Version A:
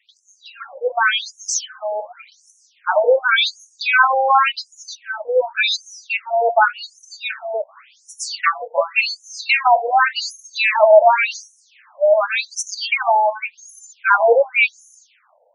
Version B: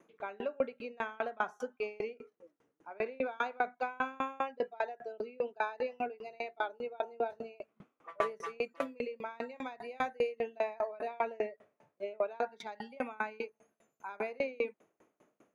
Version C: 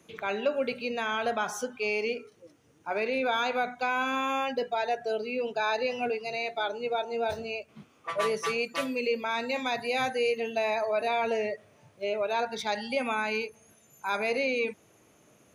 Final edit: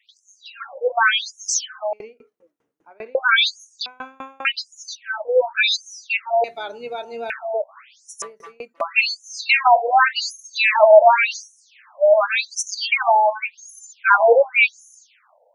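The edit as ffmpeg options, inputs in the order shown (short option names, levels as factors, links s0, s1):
-filter_complex "[1:a]asplit=3[s0][s1][s2];[0:a]asplit=5[s3][s4][s5][s6][s7];[s3]atrim=end=1.932[s8];[s0]atrim=start=1.928:end=3.152[s9];[s4]atrim=start=3.148:end=3.862[s10];[s1]atrim=start=3.858:end=4.452[s11];[s5]atrim=start=4.448:end=6.442[s12];[2:a]atrim=start=6.438:end=7.302[s13];[s6]atrim=start=7.298:end=8.222[s14];[s2]atrim=start=8.218:end=8.812[s15];[s7]atrim=start=8.808[s16];[s8][s9]acrossfade=d=0.004:c1=hsin:c2=hsin[s17];[s17][s10]acrossfade=d=0.004:c1=hsin:c2=hsin[s18];[s18][s11]acrossfade=d=0.004:c1=hsin:c2=hsin[s19];[s19][s12]acrossfade=d=0.004:c1=hsin:c2=hsin[s20];[s20][s13]acrossfade=d=0.004:c1=hsin:c2=hsin[s21];[s21][s14]acrossfade=d=0.004:c1=hsin:c2=hsin[s22];[s22][s15]acrossfade=d=0.004:c1=hsin:c2=hsin[s23];[s23][s16]acrossfade=d=0.004:c1=hsin:c2=hsin"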